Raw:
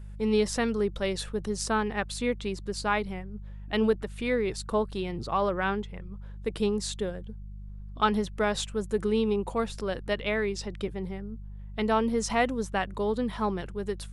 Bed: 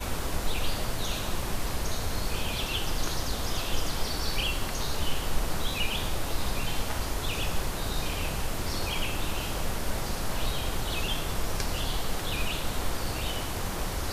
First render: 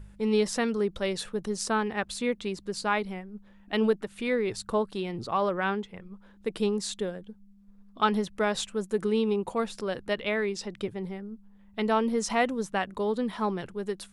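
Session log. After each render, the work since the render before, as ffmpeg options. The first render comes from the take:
-af "bandreject=f=50:t=h:w=4,bandreject=f=100:t=h:w=4,bandreject=f=150:t=h:w=4"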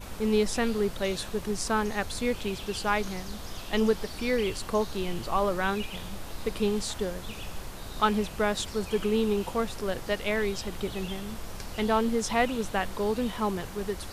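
-filter_complex "[1:a]volume=-9dB[a];[0:a][a]amix=inputs=2:normalize=0"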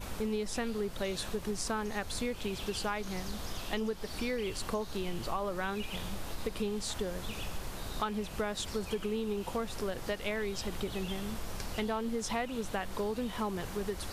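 -af "acompressor=threshold=-31dB:ratio=6"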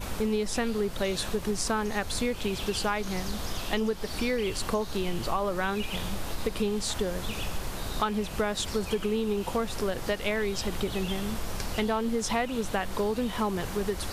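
-af "volume=6dB"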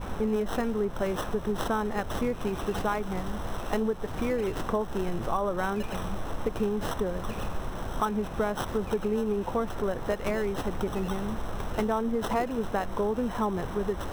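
-filter_complex "[0:a]acrossover=split=1700[a][b];[a]crystalizer=i=4.5:c=0[c];[b]acrusher=samples=19:mix=1:aa=0.000001[d];[c][d]amix=inputs=2:normalize=0"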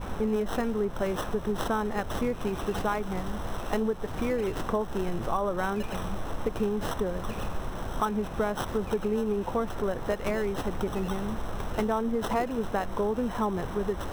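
-af anull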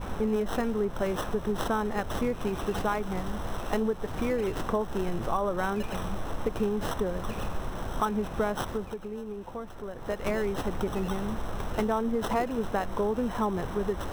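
-filter_complex "[0:a]asplit=3[a][b][c];[a]atrim=end=8.96,asetpts=PTS-STARTPTS,afade=t=out:st=8.6:d=0.36:silence=0.334965[d];[b]atrim=start=8.96:end=9.92,asetpts=PTS-STARTPTS,volume=-9.5dB[e];[c]atrim=start=9.92,asetpts=PTS-STARTPTS,afade=t=in:d=0.36:silence=0.334965[f];[d][e][f]concat=n=3:v=0:a=1"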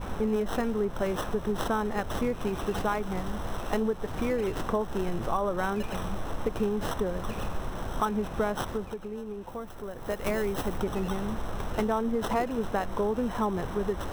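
-filter_complex "[0:a]asettb=1/sr,asplit=3[a][b][c];[a]atrim=end=9.474[d];[b]atrim=start=9.47:end=10.78,asetpts=PTS-STARTPTS,afade=t=in:d=0.004:c=qsin,afade=t=out:st=1.306:d=0.004:c=qsin,highshelf=f=9.5k:g=10[e];[c]atrim=start=10.776[f];[d][e]acrossfade=d=0.004:c1=hsin:c2=qsin[g];[g][f]acrossfade=d=0.004:c1=qsin:c2=hsin"

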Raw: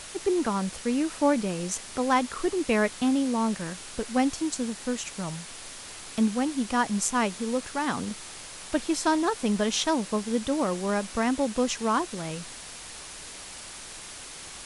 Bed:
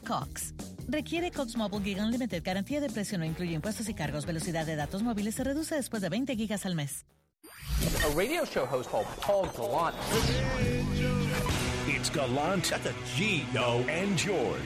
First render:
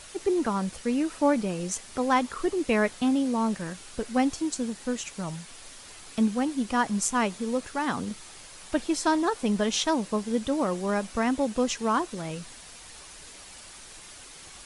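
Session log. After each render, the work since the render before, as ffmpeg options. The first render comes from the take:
-af "afftdn=nr=6:nf=-42"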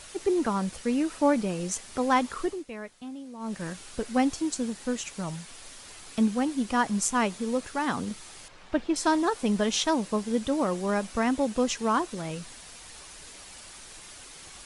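-filter_complex "[0:a]asettb=1/sr,asplit=3[a][b][c];[a]atrim=end=8.484[d];[b]atrim=start=8.48:end=8.96,asetpts=PTS-STARTPTS,afade=t=in:d=0.004:c=qsin,afade=t=out:st=0.476:d=0.004:c=qsin,adynamicsmooth=sensitivity=1.5:basefreq=3.2k[e];[c]atrim=start=8.956[f];[d][e]acrossfade=d=0.004:c1=hsin:c2=qsin[g];[g][f]acrossfade=d=0.004:c1=qsin:c2=hsin,asplit=3[h][i][j];[h]atrim=end=2.65,asetpts=PTS-STARTPTS,afade=t=out:st=2.39:d=0.26:silence=0.16788[k];[i]atrim=start=2.65:end=3.39,asetpts=PTS-STARTPTS,volume=-15.5dB[l];[j]atrim=start=3.39,asetpts=PTS-STARTPTS,afade=t=in:d=0.26:silence=0.16788[m];[k][l][m]concat=n=3:v=0:a=1"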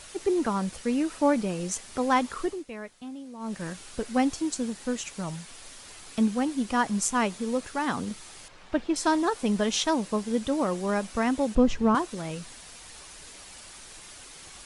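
-filter_complex "[0:a]asettb=1/sr,asplit=3[a][b][c];[a]atrim=end=11.554[d];[b]atrim=start=11.55:end=11.95,asetpts=PTS-STARTPTS,afade=t=in:d=0.004:c=qsin,afade=t=out:st=0.396:d=0.004:c=qsin,aemphasis=mode=reproduction:type=riaa[e];[c]atrim=start=11.946[f];[d][e]acrossfade=d=0.004:c1=hsin:c2=qsin[g];[g][f]acrossfade=d=0.004:c1=qsin:c2=hsin"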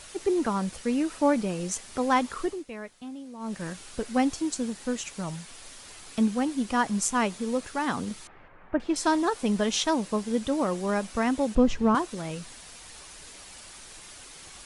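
-filter_complex "[0:a]asettb=1/sr,asplit=3[a][b][c];[a]atrim=end=8.274[d];[b]atrim=start=8.27:end=8.8,asetpts=PTS-STARTPTS,afade=t=in:d=0.004:c=qsin,afade=t=out:st=0.526:d=0.004:c=qsin,lowpass=f=2k:w=0.5412,lowpass=f=2k:w=1.3066[e];[c]atrim=start=8.796[f];[d][e]acrossfade=d=0.004:c1=hsin:c2=qsin[g];[g][f]acrossfade=d=0.004:c1=qsin:c2=hsin"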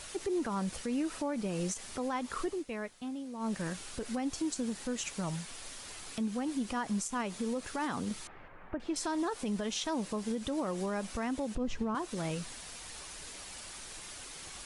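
-af "acompressor=threshold=-28dB:ratio=4,alimiter=level_in=2dB:limit=-24dB:level=0:latency=1:release=74,volume=-2dB"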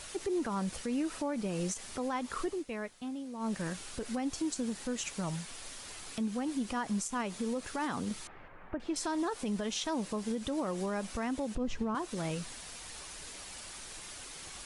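-af anull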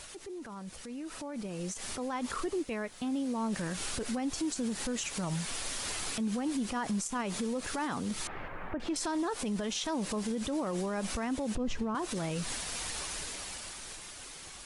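-af "alimiter=level_in=13dB:limit=-24dB:level=0:latency=1:release=135,volume=-13dB,dynaudnorm=f=300:g=11:m=11dB"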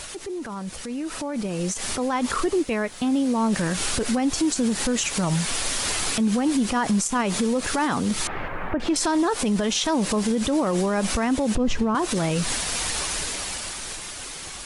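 -af "volume=11dB"

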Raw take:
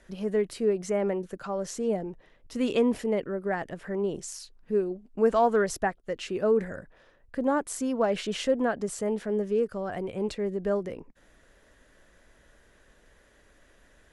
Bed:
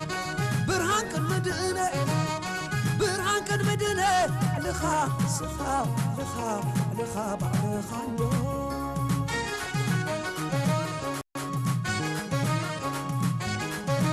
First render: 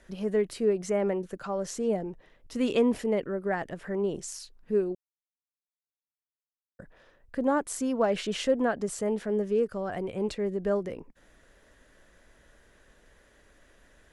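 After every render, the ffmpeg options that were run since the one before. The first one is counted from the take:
-filter_complex "[0:a]asplit=3[a][b][c];[a]atrim=end=4.95,asetpts=PTS-STARTPTS,afade=t=out:st=4.946:d=0.004:c=hsin[d];[b]atrim=start=4.95:end=6.79,asetpts=PTS-STARTPTS,volume=0[e];[c]atrim=start=6.79,asetpts=PTS-STARTPTS,afade=t=in:d=0.004:c=hsin[f];[d][e][f]concat=n=3:v=0:a=1"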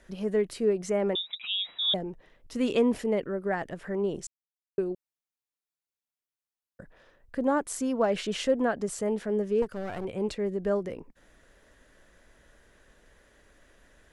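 -filter_complex "[0:a]asettb=1/sr,asplit=3[a][b][c];[a]atrim=end=1.154[d];[b]atrim=start=1.15:end=1.94,asetpts=PTS-STARTPTS,afade=t=in:d=0.004:c=qsin,afade=t=out:st=0.786:d=0.004:c=qsin,lowpass=f=3.3k:t=q:w=0.5098,lowpass=f=3.3k:t=q:w=0.6013,lowpass=f=3.3k:t=q:w=0.9,lowpass=f=3.3k:t=q:w=2.563,afreqshift=-3900[e];[c]atrim=start=1.936[f];[d][e]acrossfade=d=0.004:c1=hsin:c2=qsin[g];[g][f]acrossfade=d=0.004:c1=qsin:c2=hsin,asettb=1/sr,asplit=3[h][i][j];[h]atrim=end=9.624[k];[i]atrim=start=9.62:end=10.05,asetpts=PTS-STARTPTS,afade=t=in:d=0.004:c=qsin,afade=t=out:st=0.426:d=0.004:c=qsin,aeval=exprs='clip(val(0),-1,0.00944)':c=same[l];[j]atrim=start=10.046[m];[k][l]acrossfade=d=0.004:c1=hsin:c2=qsin[n];[n][m]acrossfade=d=0.004:c1=qsin:c2=hsin,asplit=3[o][p][q];[o]atrim=end=4.27,asetpts=PTS-STARTPTS,afade=t=out:st=4.266:d=0.004:c=hsin[r];[p]atrim=start=4.27:end=4.78,asetpts=PTS-STARTPTS,volume=0[s];[q]atrim=start=4.78,asetpts=PTS-STARTPTS,afade=t=in:d=0.004:c=hsin[t];[r][s][t]concat=n=3:v=0:a=1"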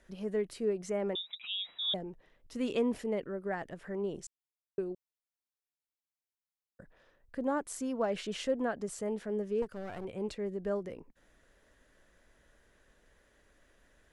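-af "volume=-6.5dB"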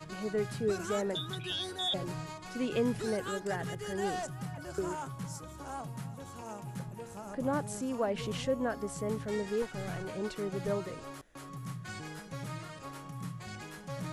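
-filter_complex "[1:a]volume=-14dB[a];[0:a][a]amix=inputs=2:normalize=0"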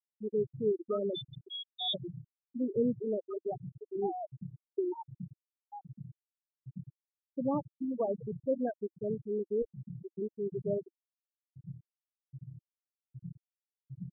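-af "afftfilt=real='re*gte(hypot(re,im),0.112)':imag='im*gte(hypot(re,im),0.112)':win_size=1024:overlap=0.75,equalizer=f=330:t=o:w=0.4:g=6.5"

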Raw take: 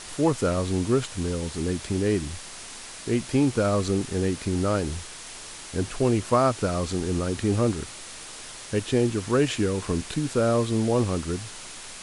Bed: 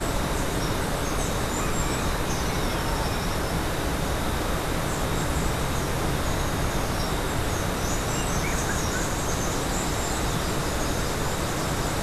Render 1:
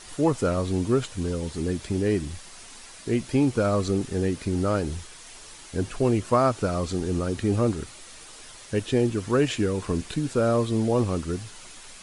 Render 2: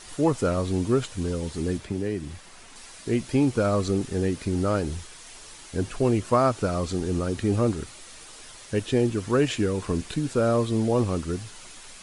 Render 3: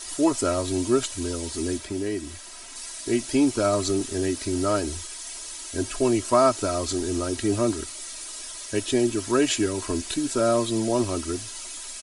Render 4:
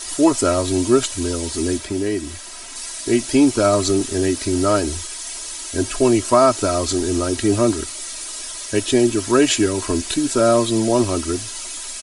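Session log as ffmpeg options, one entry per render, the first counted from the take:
-af "afftdn=nr=7:nf=-41"
-filter_complex "[0:a]asettb=1/sr,asplit=3[a][b][c];[a]atrim=end=1.774[d];[b]atrim=start=1.77:end=2.76,asetpts=PTS-STARTPTS,afade=t=in:d=0.004:c=qsin,afade=t=out:st=0.986:d=0.004:c=qsin,acrossover=split=88|3000[e][f][g];[e]acompressor=threshold=-46dB:ratio=4[h];[f]acompressor=threshold=-25dB:ratio=4[i];[g]acompressor=threshold=-51dB:ratio=4[j];[h][i][j]amix=inputs=3:normalize=0[k];[c]atrim=start=2.756[l];[d][k]acrossfade=d=0.004:c1=hsin:c2=qsin[m];[m][l]acrossfade=d=0.004:c1=qsin:c2=hsin"
-af "bass=f=250:g=-5,treble=f=4k:g=9,aecho=1:1:3.1:0.73"
-af "volume=6.5dB,alimiter=limit=-3dB:level=0:latency=1"

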